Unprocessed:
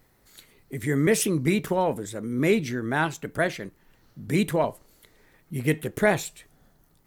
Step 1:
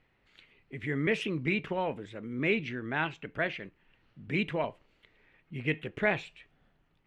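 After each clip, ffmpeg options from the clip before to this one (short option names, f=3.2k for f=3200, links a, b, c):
-af "lowpass=f=2.7k:t=q:w=3.4,volume=-8.5dB"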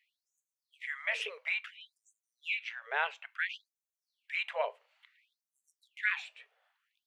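-af "afftfilt=real='re*gte(b*sr/1024,400*pow(6100/400,0.5+0.5*sin(2*PI*0.58*pts/sr)))':imag='im*gte(b*sr/1024,400*pow(6100/400,0.5+0.5*sin(2*PI*0.58*pts/sr)))':win_size=1024:overlap=0.75"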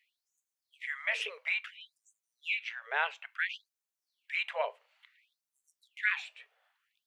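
-af "lowshelf=f=380:g=-6,volume=1.5dB"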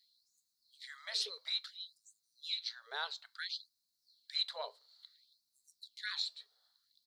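-af "firequalizer=gain_entry='entry(250,0);entry(530,-17);entry(1300,-13);entry(2600,-29);entry(4100,15);entry(6100,-1)':delay=0.05:min_phase=1,volume=5.5dB"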